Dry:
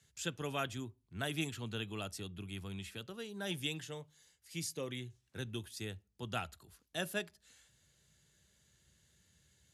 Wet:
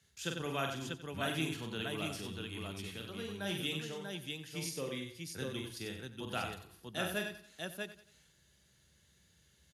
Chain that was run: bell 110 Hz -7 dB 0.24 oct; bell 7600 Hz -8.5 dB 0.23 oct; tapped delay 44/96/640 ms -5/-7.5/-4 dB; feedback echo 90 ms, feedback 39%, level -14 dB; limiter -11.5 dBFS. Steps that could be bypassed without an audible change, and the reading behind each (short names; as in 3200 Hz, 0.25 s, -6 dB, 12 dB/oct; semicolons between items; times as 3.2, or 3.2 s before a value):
limiter -11.5 dBFS: input peak -21.0 dBFS